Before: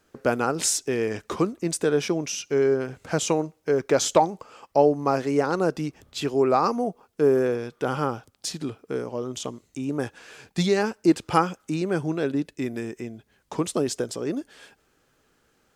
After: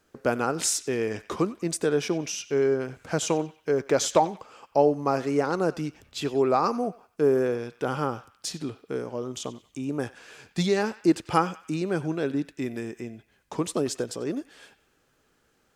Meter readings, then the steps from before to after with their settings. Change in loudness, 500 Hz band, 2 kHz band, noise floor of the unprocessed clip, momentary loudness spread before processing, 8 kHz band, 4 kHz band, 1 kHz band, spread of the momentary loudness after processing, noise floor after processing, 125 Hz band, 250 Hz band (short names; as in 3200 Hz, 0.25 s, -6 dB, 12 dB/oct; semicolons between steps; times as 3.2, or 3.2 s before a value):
-2.0 dB, -2.0 dB, -2.0 dB, -67 dBFS, 12 LU, -2.0 dB, -2.0 dB, -2.0 dB, 12 LU, -68 dBFS, -2.0 dB, -2.0 dB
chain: narrowing echo 93 ms, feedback 50%, band-pass 2300 Hz, level -14.5 dB; gain -2 dB